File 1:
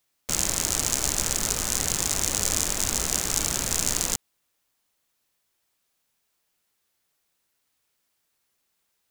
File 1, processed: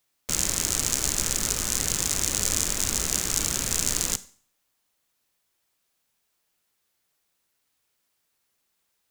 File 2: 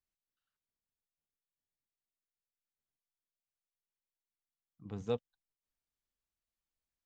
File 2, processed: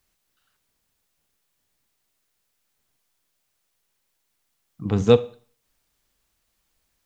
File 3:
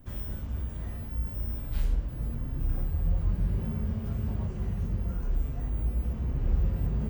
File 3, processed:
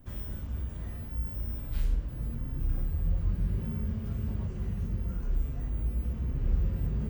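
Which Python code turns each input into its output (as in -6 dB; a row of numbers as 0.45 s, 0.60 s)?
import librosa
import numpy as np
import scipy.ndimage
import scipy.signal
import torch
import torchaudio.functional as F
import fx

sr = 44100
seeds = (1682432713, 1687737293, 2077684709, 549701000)

y = fx.dynamic_eq(x, sr, hz=760.0, q=1.5, threshold_db=-52.0, ratio=4.0, max_db=-5)
y = fx.rev_schroeder(y, sr, rt60_s=0.46, comb_ms=31, drr_db=16.5)
y = y * 10.0 ** (-30 / 20.0) / np.sqrt(np.mean(np.square(y)))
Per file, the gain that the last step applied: 0.0 dB, +20.5 dB, -1.5 dB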